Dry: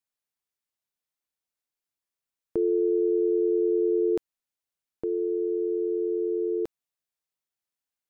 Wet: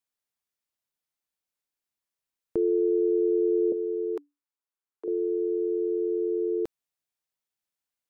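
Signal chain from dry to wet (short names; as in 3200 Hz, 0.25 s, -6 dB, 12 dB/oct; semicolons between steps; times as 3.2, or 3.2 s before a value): 3.72–5.08 rippled Chebyshev high-pass 280 Hz, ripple 9 dB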